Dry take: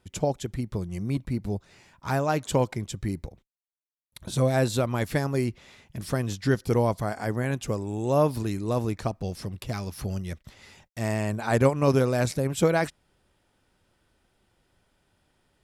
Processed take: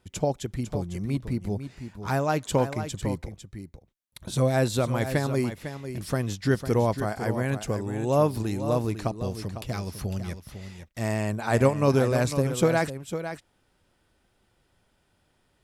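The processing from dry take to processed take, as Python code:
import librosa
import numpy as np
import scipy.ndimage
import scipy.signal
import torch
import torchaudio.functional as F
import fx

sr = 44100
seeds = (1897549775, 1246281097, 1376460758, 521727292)

y = x + 10.0 ** (-10.0 / 20.0) * np.pad(x, (int(502 * sr / 1000.0), 0))[:len(x)]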